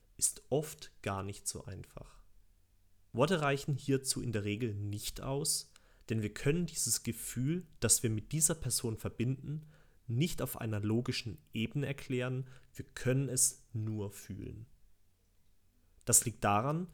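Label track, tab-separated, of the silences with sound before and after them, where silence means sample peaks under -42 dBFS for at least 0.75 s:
2.020000	3.140000	silence
14.630000	16.010000	silence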